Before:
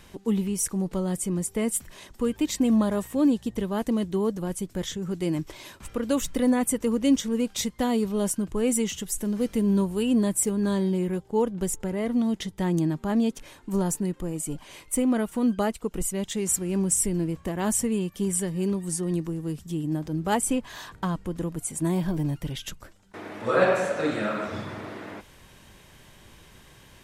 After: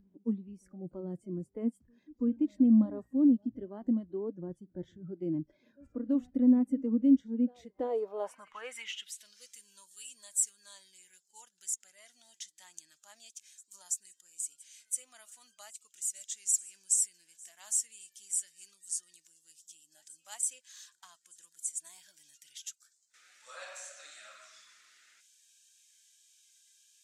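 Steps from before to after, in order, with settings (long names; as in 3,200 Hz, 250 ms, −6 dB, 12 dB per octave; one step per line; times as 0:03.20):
band-pass filter sweep 240 Hz → 7,000 Hz, 0:07.52–0:09.52
backwards echo 332 ms −21.5 dB
noise reduction from a noise print of the clip's start 16 dB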